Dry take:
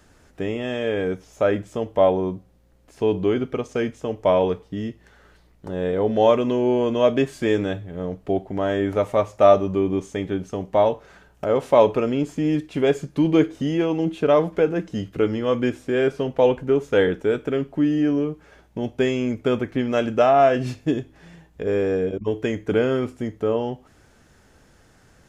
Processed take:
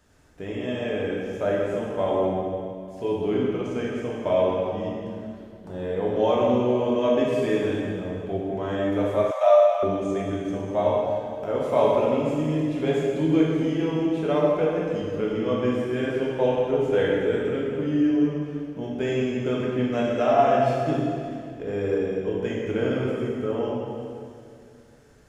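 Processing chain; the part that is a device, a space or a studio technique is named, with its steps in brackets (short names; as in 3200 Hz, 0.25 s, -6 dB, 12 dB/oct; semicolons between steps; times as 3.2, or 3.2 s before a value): stairwell (reverb RT60 2.3 s, pre-delay 9 ms, DRR -5 dB); 9.31–9.83 steep high-pass 550 Hz 72 dB/oct; gain -9 dB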